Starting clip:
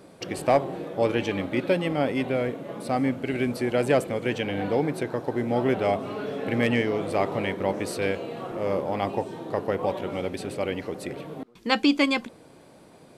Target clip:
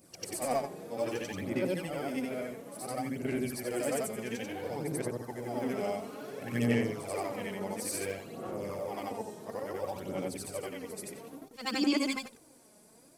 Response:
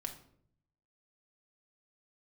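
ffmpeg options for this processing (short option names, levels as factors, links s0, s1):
-af "afftfilt=real='re':imag='-im':win_size=8192:overlap=0.75,aphaser=in_gain=1:out_gain=1:delay=4.8:decay=0.51:speed=0.58:type=sinusoidal,aexciter=amount=5.9:drive=2.4:freq=5000,volume=0.447"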